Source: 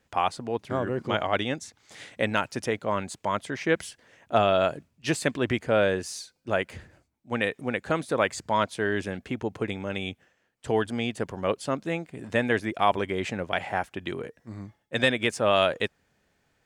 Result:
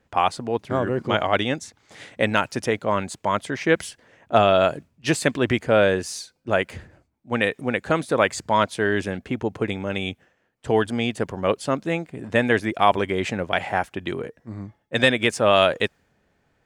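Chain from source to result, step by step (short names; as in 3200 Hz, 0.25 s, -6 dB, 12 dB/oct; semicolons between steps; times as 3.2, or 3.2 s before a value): mismatched tape noise reduction decoder only; gain +5 dB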